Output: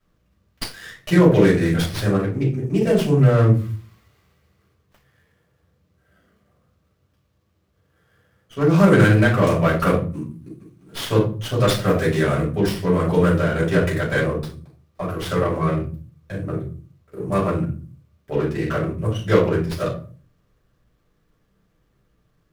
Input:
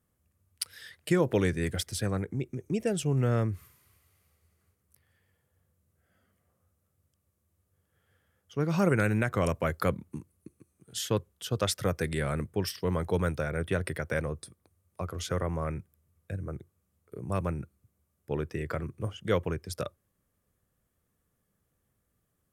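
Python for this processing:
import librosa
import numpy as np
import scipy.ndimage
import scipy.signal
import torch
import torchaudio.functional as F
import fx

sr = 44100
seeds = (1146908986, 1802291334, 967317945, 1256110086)

y = fx.room_shoebox(x, sr, seeds[0], volume_m3=240.0, walls='furnished', distance_m=6.1)
y = fx.running_max(y, sr, window=5)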